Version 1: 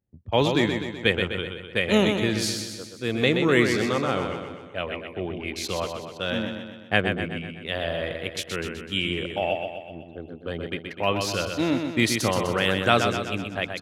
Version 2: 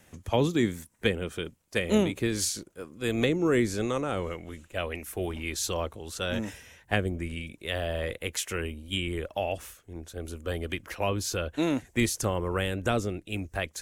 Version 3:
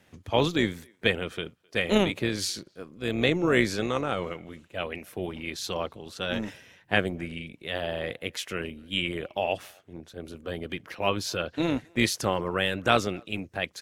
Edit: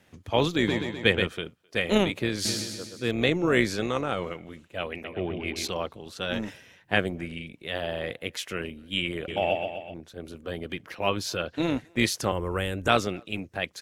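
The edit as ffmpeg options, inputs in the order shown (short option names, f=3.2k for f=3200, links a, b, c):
-filter_complex "[0:a]asplit=4[a][b][c][d];[2:a]asplit=6[e][f][g][h][i][j];[e]atrim=end=0.682[k];[a]atrim=start=0.678:end=1.272[l];[f]atrim=start=1.268:end=2.452[m];[b]atrim=start=2.448:end=3.112[n];[g]atrim=start=3.108:end=5.042[o];[c]atrim=start=5.038:end=5.692[p];[h]atrim=start=5.688:end=9.282[q];[d]atrim=start=9.278:end=9.942[r];[i]atrim=start=9.938:end=12.322[s];[1:a]atrim=start=12.318:end=12.882[t];[j]atrim=start=12.878[u];[k][l]acrossfade=d=0.004:c1=hsin:c2=hsin[v];[v][m]acrossfade=d=0.004:c1=hsin:c2=hsin[w];[w][n]acrossfade=d=0.004:c1=hsin:c2=hsin[x];[x][o]acrossfade=d=0.004:c1=hsin:c2=hsin[y];[y][p]acrossfade=d=0.004:c1=hsin:c2=hsin[z];[z][q]acrossfade=d=0.004:c1=hsin:c2=hsin[aa];[aa][r]acrossfade=d=0.004:c1=hsin:c2=hsin[ab];[ab][s]acrossfade=d=0.004:c1=hsin:c2=hsin[ac];[ac][t]acrossfade=d=0.004:c1=hsin:c2=hsin[ad];[ad][u]acrossfade=d=0.004:c1=hsin:c2=hsin"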